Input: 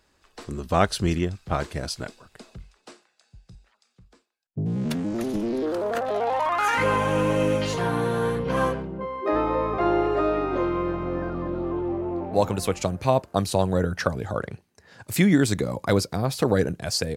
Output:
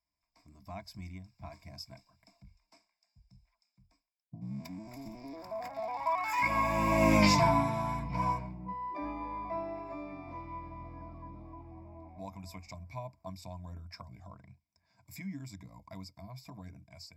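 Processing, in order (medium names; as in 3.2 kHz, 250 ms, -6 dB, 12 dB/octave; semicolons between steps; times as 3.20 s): Doppler pass-by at 7.22 s, 18 m/s, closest 2.9 m; in parallel at +3 dB: compression, threshold -58 dBFS, peak gain reduction 33.5 dB; on the sum: rippled EQ curve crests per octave 1.7, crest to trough 13 dB; level rider gain up to 6.5 dB; treble shelf 12 kHz +9 dB; static phaser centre 2.2 kHz, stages 8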